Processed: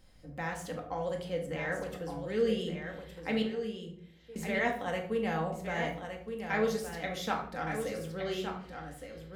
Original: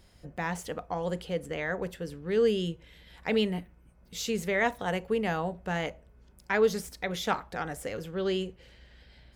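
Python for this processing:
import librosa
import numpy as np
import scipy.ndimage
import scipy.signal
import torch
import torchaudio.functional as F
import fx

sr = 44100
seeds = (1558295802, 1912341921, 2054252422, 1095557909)

p1 = fx.ladder_bandpass(x, sr, hz=710.0, resonance_pct=30, at=(3.42, 4.36))
p2 = p1 + fx.echo_single(p1, sr, ms=1166, db=-7.5, dry=0)
p3 = fx.room_shoebox(p2, sr, seeds[0], volume_m3=720.0, walls='furnished', distance_m=2.1)
y = p3 * 10.0 ** (-6.0 / 20.0)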